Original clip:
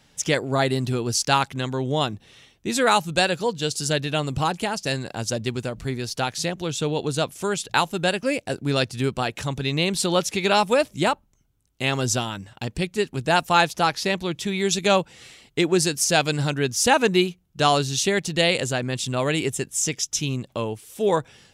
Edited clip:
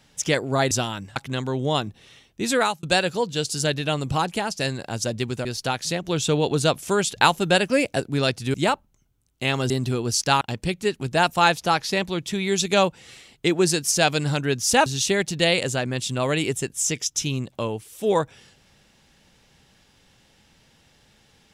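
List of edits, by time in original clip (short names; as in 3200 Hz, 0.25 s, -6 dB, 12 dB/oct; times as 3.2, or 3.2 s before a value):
0.71–1.42 swap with 12.09–12.54
2.82–3.09 fade out
5.71–5.98 cut
6.62–8.53 gain +3.5 dB
9.07–10.93 cut
16.99–17.83 cut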